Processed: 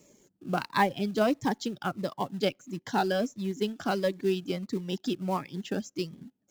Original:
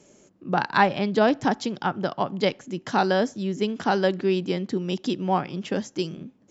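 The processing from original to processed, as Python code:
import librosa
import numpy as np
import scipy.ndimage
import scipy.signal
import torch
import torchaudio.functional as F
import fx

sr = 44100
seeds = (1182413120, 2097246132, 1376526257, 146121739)

p1 = fx.dereverb_blind(x, sr, rt60_s=0.91)
p2 = fx.quant_companded(p1, sr, bits=4)
p3 = p1 + F.gain(torch.from_numpy(p2), -9.0).numpy()
p4 = fx.notch_cascade(p3, sr, direction='falling', hz=1.5)
y = F.gain(torch.from_numpy(p4), -6.0).numpy()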